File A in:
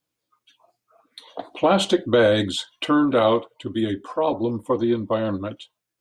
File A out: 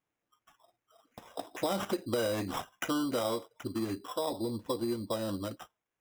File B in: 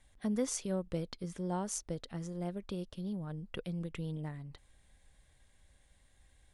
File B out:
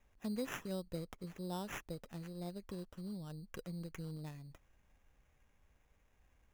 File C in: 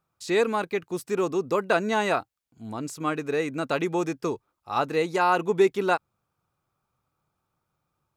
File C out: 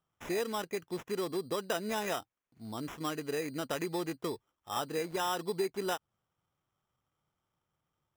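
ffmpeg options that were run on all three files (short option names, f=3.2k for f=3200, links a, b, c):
-af "acompressor=threshold=-26dB:ratio=2.5,acrusher=samples=10:mix=1:aa=0.000001,volume=-6dB"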